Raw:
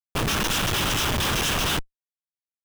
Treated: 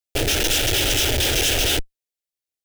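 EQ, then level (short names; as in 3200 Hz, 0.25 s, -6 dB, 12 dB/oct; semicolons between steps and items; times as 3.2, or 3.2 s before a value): fixed phaser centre 450 Hz, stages 4; +6.5 dB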